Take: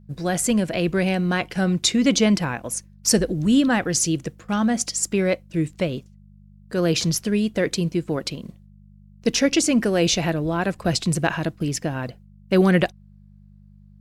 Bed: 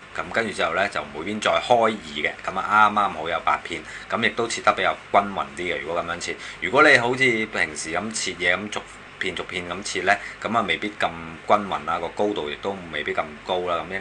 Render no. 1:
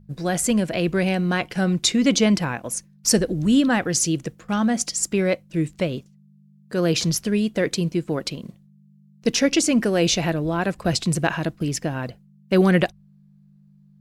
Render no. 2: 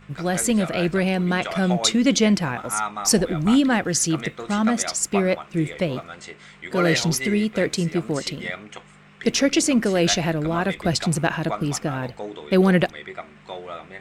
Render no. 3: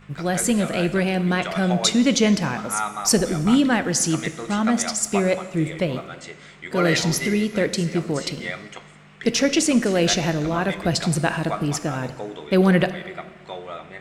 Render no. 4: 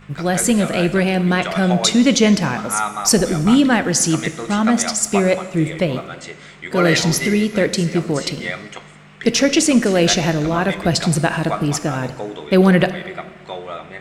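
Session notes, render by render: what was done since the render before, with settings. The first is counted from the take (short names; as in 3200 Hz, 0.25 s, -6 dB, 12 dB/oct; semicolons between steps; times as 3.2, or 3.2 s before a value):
de-hum 50 Hz, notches 2
add bed -10.5 dB
plate-style reverb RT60 1.5 s, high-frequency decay 0.95×, DRR 11 dB
gain +4.5 dB; limiter -3 dBFS, peak gain reduction 3 dB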